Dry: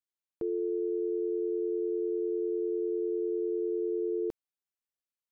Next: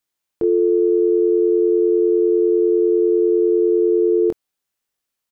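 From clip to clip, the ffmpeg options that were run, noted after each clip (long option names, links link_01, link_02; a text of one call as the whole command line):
ffmpeg -i in.wav -filter_complex "[0:a]asplit=2[link_01][link_02];[link_02]adelay=23,volume=-7dB[link_03];[link_01][link_03]amix=inputs=2:normalize=0,acontrast=72,volume=6dB" out.wav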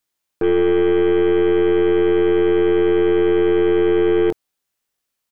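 ffmpeg -i in.wav -af "aeval=exprs='0.335*(cos(1*acos(clip(val(0)/0.335,-1,1)))-cos(1*PI/2))+0.0299*(cos(4*acos(clip(val(0)/0.335,-1,1)))-cos(4*PI/2))+0.0211*(cos(5*acos(clip(val(0)/0.335,-1,1)))-cos(5*PI/2))+0.0211*(cos(8*acos(clip(val(0)/0.335,-1,1)))-cos(8*PI/2))':channel_layout=same" out.wav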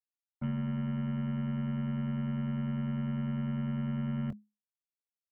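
ffmpeg -i in.wav -filter_complex "[0:a]acrossover=split=220|2300[link_01][link_02][link_03];[link_01]acompressor=threshold=-34dB:ratio=4[link_04];[link_02]acompressor=threshold=-23dB:ratio=4[link_05];[link_03]acompressor=threshold=-53dB:ratio=4[link_06];[link_04][link_05][link_06]amix=inputs=3:normalize=0,agate=range=-33dB:threshold=-17dB:ratio=3:detection=peak,afreqshift=-210,volume=-4dB" out.wav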